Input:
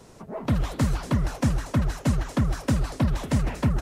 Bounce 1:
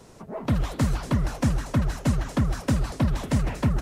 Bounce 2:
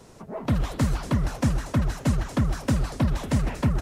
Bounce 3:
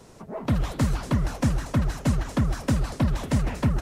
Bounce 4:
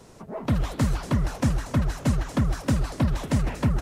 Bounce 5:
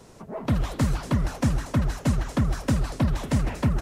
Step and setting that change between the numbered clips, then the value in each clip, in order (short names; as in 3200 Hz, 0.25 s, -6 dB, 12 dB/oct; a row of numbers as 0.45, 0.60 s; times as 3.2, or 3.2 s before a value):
warbling echo, time: 480, 124, 186, 290, 85 ms